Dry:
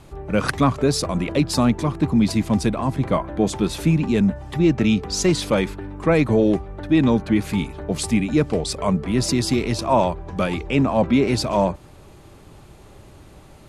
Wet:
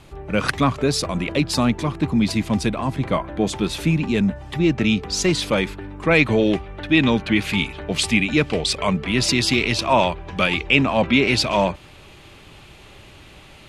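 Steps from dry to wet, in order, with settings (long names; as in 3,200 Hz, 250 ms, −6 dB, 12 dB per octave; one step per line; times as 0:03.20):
parametric band 2,800 Hz +6.5 dB 1.6 octaves, from 0:06.11 +14.5 dB
level −1.5 dB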